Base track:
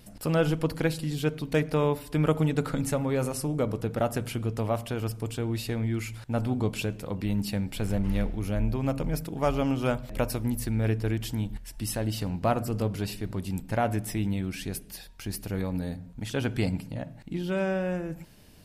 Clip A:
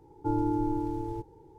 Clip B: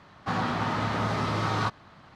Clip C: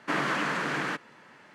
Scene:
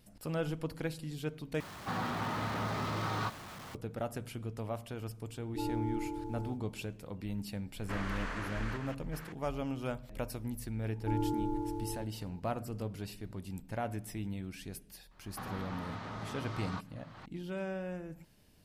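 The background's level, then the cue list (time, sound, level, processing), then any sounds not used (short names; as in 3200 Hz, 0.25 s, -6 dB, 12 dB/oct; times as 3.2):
base track -10.5 dB
1.6 replace with B -9 dB + zero-crossing step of -34 dBFS
5.29 add A -8 dB + dispersion highs, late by 64 ms, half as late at 620 Hz
7.81 add C -12.5 dB + reverse delay 0.379 s, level -7 dB
10.82 add A -5.5 dB
15.11 add B -15 dB + recorder AGC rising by 40 dB/s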